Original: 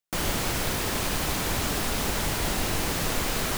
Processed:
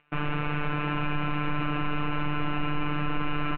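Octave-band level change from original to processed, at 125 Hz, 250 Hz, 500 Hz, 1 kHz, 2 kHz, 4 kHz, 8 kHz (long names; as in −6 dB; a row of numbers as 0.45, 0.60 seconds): +1.5 dB, +2.0 dB, −5.5 dB, +0.5 dB, −1.5 dB, −10.0 dB, below −40 dB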